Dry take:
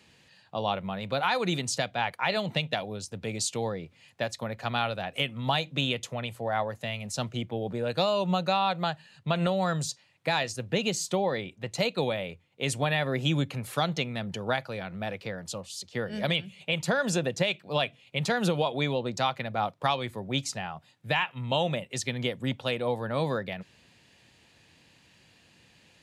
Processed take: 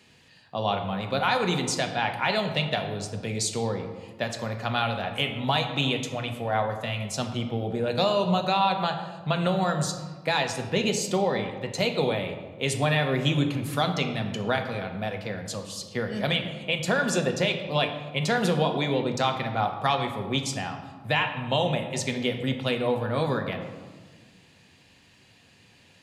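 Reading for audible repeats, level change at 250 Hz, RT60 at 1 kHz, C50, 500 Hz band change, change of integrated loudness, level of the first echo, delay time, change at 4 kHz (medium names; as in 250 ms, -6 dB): no echo, +3.5 dB, 1.4 s, 7.5 dB, +3.0 dB, +3.0 dB, no echo, no echo, +2.5 dB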